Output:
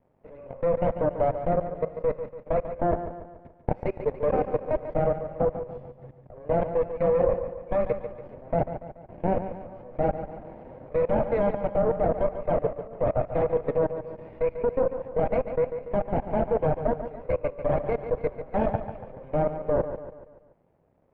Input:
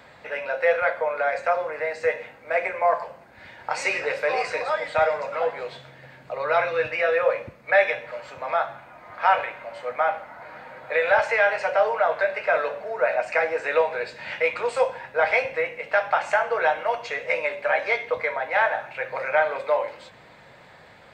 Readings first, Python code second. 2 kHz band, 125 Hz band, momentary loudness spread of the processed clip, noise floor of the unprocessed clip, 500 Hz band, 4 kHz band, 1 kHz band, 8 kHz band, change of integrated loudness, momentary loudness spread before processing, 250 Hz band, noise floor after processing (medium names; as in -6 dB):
-21.0 dB, +17.0 dB, 14 LU, -50 dBFS, -1.0 dB, under -20 dB, -7.0 dB, no reading, -3.5 dB, 12 LU, +15.5 dB, -57 dBFS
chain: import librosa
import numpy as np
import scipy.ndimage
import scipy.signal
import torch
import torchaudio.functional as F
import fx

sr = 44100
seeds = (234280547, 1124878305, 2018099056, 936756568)

p1 = fx.lower_of_two(x, sr, delay_ms=0.39)
p2 = fx.low_shelf(p1, sr, hz=480.0, db=11.5)
p3 = np.sign(p2) * np.maximum(np.abs(p2) - 10.0 ** (-47.0 / 20.0), 0.0)
p4 = fx.level_steps(p3, sr, step_db=22)
p5 = scipy.signal.sosfilt(scipy.signal.cheby1(2, 1.0, 730.0, 'lowpass', fs=sr, output='sos'), p4)
p6 = fx.low_shelf(p5, sr, hz=170.0, db=-3.0)
p7 = p6 + fx.echo_feedback(p6, sr, ms=143, feedback_pct=48, wet_db=-10.0, dry=0)
y = p7 * 10.0 ** (1.5 / 20.0)